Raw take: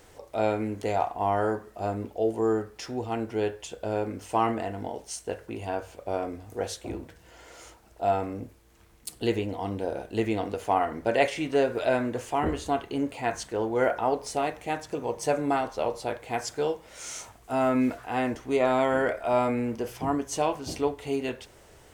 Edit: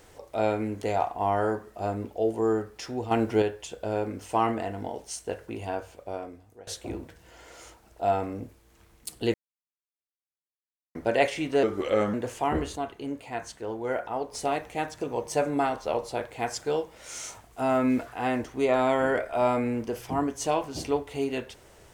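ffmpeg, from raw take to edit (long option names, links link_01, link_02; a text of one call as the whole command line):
ffmpeg -i in.wav -filter_complex "[0:a]asplit=10[link_01][link_02][link_03][link_04][link_05][link_06][link_07][link_08][link_09][link_10];[link_01]atrim=end=3.112[link_11];[link_02]atrim=start=3.108:end=3.422,asetpts=PTS-STARTPTS,volume=6dB[link_12];[link_03]atrim=start=3.418:end=6.67,asetpts=PTS-STARTPTS,afade=type=out:start_time=2.212:duration=1.04:silence=0.0794328[link_13];[link_04]atrim=start=6.67:end=9.34,asetpts=PTS-STARTPTS,afade=type=in:duration=0.004:curve=hsin:silence=0.0794328,afade=type=out:start_time=2.666:duration=0.004:curve=hsin[link_14];[link_05]atrim=start=9.34:end=10.95,asetpts=PTS-STARTPTS,volume=0[link_15];[link_06]atrim=start=10.95:end=11.634,asetpts=PTS-STARTPTS,afade=type=in:duration=0.004:curve=hsin[link_16];[link_07]atrim=start=11.63:end=12.05,asetpts=PTS-STARTPTS,asetrate=36603,aresample=44100[link_17];[link_08]atrim=start=12.046:end=12.672[link_18];[link_09]atrim=start=12.668:end=14.252,asetpts=PTS-STARTPTS,volume=-5.5dB[link_19];[link_10]atrim=start=14.248[link_20];[link_11][link_12]acrossfade=duration=0.004:curve1=hsin:curve2=hsin[link_21];[link_13][link_14][link_15][link_16]concat=n=4:v=0:a=1[link_22];[link_21][link_22]acrossfade=duration=0.004:curve1=hsin:curve2=hsin[link_23];[link_23][link_17]acrossfade=duration=0.004:curve1=hsin:curve2=hsin[link_24];[link_24][link_18]acrossfade=duration=0.004:curve1=hsin:curve2=hsin[link_25];[link_25][link_19]acrossfade=duration=0.004:curve1=hsin:curve2=hsin[link_26];[link_26][link_20]acrossfade=duration=0.004:curve1=hsin:curve2=hsin" out.wav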